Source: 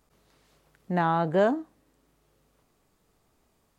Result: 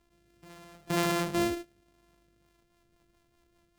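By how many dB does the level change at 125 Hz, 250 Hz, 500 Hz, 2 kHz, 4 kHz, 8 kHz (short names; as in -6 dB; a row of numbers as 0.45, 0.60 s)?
-5.0 dB, -2.0 dB, -7.0 dB, -2.0 dB, +8.5 dB, n/a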